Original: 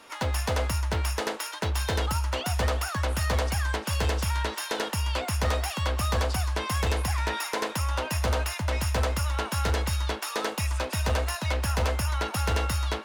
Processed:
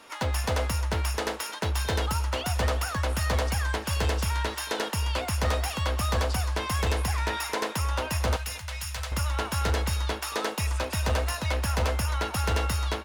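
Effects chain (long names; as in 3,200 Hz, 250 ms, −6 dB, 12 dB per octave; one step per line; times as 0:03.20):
0:08.36–0:09.12: guitar amp tone stack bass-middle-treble 10-0-10
on a send: single-tap delay 225 ms −18.5 dB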